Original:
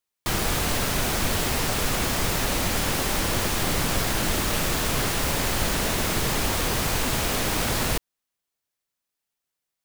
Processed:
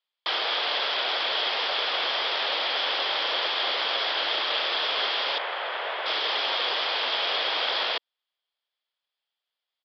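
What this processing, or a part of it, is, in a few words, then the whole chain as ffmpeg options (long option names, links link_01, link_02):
musical greeting card: -filter_complex "[0:a]asettb=1/sr,asplit=3[link_01][link_02][link_03];[link_01]atrim=end=5.384[link_04];[link_02]atrim=start=5.38:end=6.06,asetpts=PTS-STARTPTS,afade=type=in:duration=0.004:curve=qsin,afade=type=out:start_time=0.676:duration=0.004:curve=qsin,acrossover=split=350 2600:gain=0.0794 1 0.0794[link_05][link_06][link_07];[link_05][link_06][link_07]amix=inputs=3:normalize=0[link_08];[link_03]atrim=start=6.056[link_09];[link_04][link_08]acrossfade=duration=0.004:curve1=hsin:curve2=qsin[link_10];[link_10][link_09]acrossfade=duration=0.004:curve1=qsin:curve2=hsin,aresample=11025,aresample=44100,highpass=frequency=500:width=0.5412,highpass=frequency=500:width=1.3066,equalizer=frequency=3300:width_type=o:width=0.25:gain=11.5"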